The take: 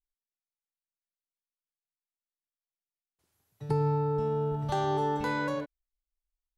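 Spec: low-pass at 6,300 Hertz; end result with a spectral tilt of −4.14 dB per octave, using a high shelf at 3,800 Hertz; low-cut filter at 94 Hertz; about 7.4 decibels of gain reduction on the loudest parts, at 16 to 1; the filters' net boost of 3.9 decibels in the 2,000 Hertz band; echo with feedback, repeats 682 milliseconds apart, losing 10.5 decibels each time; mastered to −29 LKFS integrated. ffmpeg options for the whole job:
ffmpeg -i in.wav -af "highpass=94,lowpass=6300,equalizer=frequency=2000:width_type=o:gain=7.5,highshelf=frequency=3800:gain=-8,acompressor=threshold=-31dB:ratio=16,aecho=1:1:682|1364|2046:0.299|0.0896|0.0269,volume=7dB" out.wav

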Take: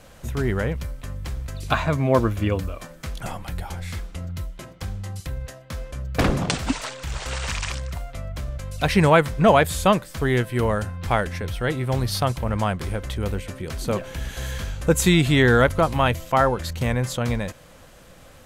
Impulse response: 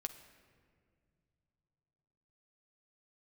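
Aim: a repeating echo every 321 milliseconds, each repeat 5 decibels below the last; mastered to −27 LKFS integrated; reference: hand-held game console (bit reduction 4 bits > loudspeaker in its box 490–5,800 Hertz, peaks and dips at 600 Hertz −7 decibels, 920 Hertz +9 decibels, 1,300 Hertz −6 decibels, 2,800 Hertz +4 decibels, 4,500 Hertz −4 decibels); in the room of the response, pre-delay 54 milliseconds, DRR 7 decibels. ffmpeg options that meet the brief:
-filter_complex "[0:a]aecho=1:1:321|642|963|1284|1605|1926|2247:0.562|0.315|0.176|0.0988|0.0553|0.031|0.0173,asplit=2[link_01][link_02];[1:a]atrim=start_sample=2205,adelay=54[link_03];[link_02][link_03]afir=irnorm=-1:irlink=0,volume=-5dB[link_04];[link_01][link_04]amix=inputs=2:normalize=0,acrusher=bits=3:mix=0:aa=0.000001,highpass=490,equalizer=frequency=600:width_type=q:width=4:gain=-7,equalizer=frequency=920:width_type=q:width=4:gain=9,equalizer=frequency=1300:width_type=q:width=4:gain=-6,equalizer=frequency=2800:width_type=q:width=4:gain=4,equalizer=frequency=4500:width_type=q:width=4:gain=-4,lowpass=frequency=5800:width=0.5412,lowpass=frequency=5800:width=1.3066,volume=-4dB"

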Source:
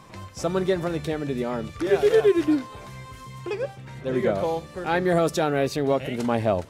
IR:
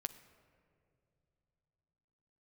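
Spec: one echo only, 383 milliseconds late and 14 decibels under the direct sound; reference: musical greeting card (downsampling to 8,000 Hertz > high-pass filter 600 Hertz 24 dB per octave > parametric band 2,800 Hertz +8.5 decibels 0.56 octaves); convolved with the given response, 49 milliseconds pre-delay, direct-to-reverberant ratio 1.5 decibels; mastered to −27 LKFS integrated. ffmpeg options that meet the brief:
-filter_complex "[0:a]aecho=1:1:383:0.2,asplit=2[link_01][link_02];[1:a]atrim=start_sample=2205,adelay=49[link_03];[link_02][link_03]afir=irnorm=-1:irlink=0,volume=0.5dB[link_04];[link_01][link_04]amix=inputs=2:normalize=0,aresample=8000,aresample=44100,highpass=frequency=600:width=0.5412,highpass=frequency=600:width=1.3066,equalizer=frequency=2800:width_type=o:width=0.56:gain=8.5,volume=0.5dB"

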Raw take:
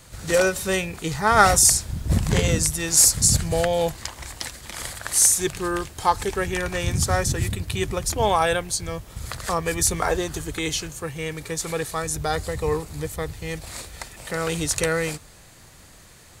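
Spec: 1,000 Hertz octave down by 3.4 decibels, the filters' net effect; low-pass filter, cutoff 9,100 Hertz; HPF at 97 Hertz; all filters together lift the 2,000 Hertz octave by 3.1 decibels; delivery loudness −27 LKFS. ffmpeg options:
ffmpeg -i in.wav -af "highpass=97,lowpass=9100,equalizer=frequency=1000:width_type=o:gain=-7,equalizer=frequency=2000:width_type=o:gain=6.5,volume=-4dB" out.wav

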